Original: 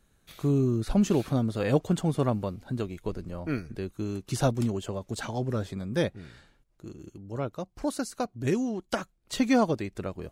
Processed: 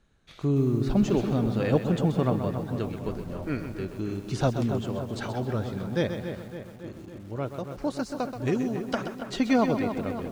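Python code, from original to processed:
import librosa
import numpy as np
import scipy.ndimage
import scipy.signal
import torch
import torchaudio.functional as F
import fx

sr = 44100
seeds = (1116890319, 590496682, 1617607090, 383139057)

y = scipy.signal.sosfilt(scipy.signal.butter(2, 5300.0, 'lowpass', fs=sr, output='sos'), x)
y = fx.echo_wet_lowpass(y, sr, ms=280, feedback_pct=61, hz=2700.0, wet_db=-9)
y = fx.echo_crushed(y, sr, ms=129, feedback_pct=35, bits=8, wet_db=-9.0)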